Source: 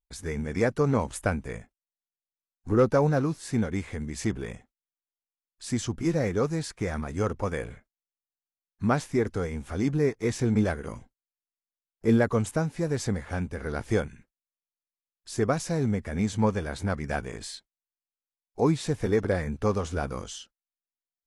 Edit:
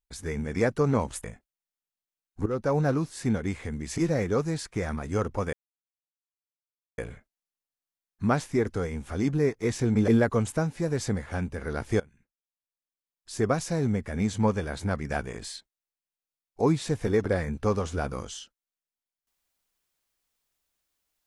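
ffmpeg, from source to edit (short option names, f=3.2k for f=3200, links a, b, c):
-filter_complex "[0:a]asplit=7[a][b][c][d][e][f][g];[a]atrim=end=1.242[h];[b]atrim=start=1.518:end=2.74,asetpts=PTS-STARTPTS,afade=t=out:st=1.218:d=0.004:c=hsin:silence=0.199526[i];[c]atrim=start=2.74:end=4.262,asetpts=PTS-STARTPTS,afade=t=in:d=0.41:silence=0.199526[j];[d]atrim=start=6.028:end=7.58,asetpts=PTS-STARTPTS,afade=t=out:st=1.548:d=0.004:c=hsin,apad=pad_dur=1.45[k];[e]atrim=start=7.58:end=10.682,asetpts=PTS-STARTPTS,afade=t=in:d=0.004:c=hsin[l];[f]atrim=start=12.068:end=13.99,asetpts=PTS-STARTPTS,afade=t=out:st=1.918:d=0.004:c=hsin:silence=0.0841395[m];[g]atrim=start=13.99,asetpts=PTS-STARTPTS,afade=t=in:d=1.43:silence=0.0841395[n];[i][j]concat=n=2:v=0:a=1[o];[h][o]acrossfade=d=0.004:c1=hsin:c2=hsin[p];[k][l]concat=n=2:v=0:a=1[q];[p][q]acrossfade=d=0.004:c1=hsin:c2=hsin[r];[m][n]concat=n=2:v=0:a=1[s];[r][s]acrossfade=d=0.004:c1=hsin:c2=hsin"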